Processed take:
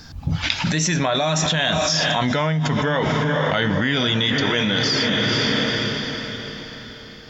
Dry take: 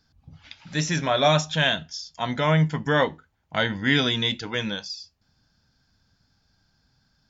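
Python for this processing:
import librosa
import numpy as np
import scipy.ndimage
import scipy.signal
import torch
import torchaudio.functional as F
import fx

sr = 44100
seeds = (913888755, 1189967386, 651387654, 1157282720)

y = fx.doppler_pass(x, sr, speed_mps=8, closest_m=5.2, pass_at_s=2.43)
y = fx.echo_diffused(y, sr, ms=468, feedback_pct=43, wet_db=-13.0)
y = fx.env_flatten(y, sr, amount_pct=100)
y = y * 10.0 ** (-3.0 / 20.0)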